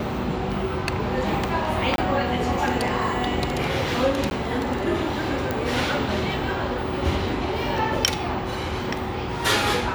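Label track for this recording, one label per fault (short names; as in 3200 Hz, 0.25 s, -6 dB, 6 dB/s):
1.960000	1.980000	gap 22 ms
4.300000	4.310000	gap
5.510000	5.510000	pop -11 dBFS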